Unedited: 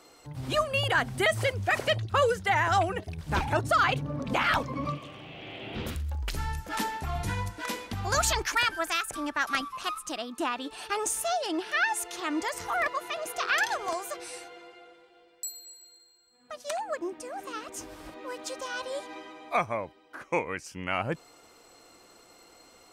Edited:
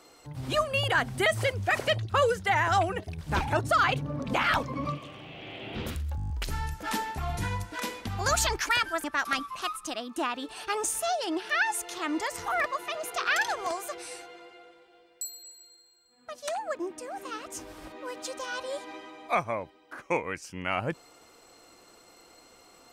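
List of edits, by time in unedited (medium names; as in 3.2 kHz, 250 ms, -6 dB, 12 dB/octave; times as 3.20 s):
6.16 s: stutter 0.02 s, 8 plays
8.90–9.26 s: delete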